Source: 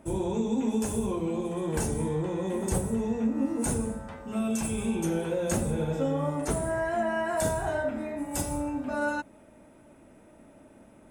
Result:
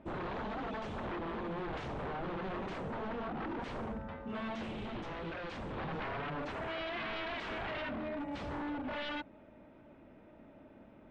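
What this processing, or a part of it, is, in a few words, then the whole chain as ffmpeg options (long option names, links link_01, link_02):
synthesiser wavefolder: -filter_complex "[0:a]aeval=exprs='0.0282*(abs(mod(val(0)/0.0282+3,4)-2)-1)':channel_layout=same,lowpass=frequency=3700:width=0.5412,lowpass=frequency=3700:width=1.3066,asettb=1/sr,asplit=3[link_01][link_02][link_03];[link_01]atrim=end=4.714[link_04];[link_02]atrim=start=4.71:end=5.77,asetpts=PTS-STARTPTS,afade=type=in:duration=0.004:curve=qsin,afade=type=out:start_time=1.056:duration=0.004:curve=qsin,equalizer=frequency=940:width_type=o:width=2.8:gain=-4[link_05];[link_03]atrim=start=5.766[link_06];[link_04][link_05]acrossfade=duration=0.004:curve1=hsin:curve2=qsin[link_07];[link_07][link_06]acrossfade=duration=0.004:curve1=qsin:curve2=hsin,volume=-3dB"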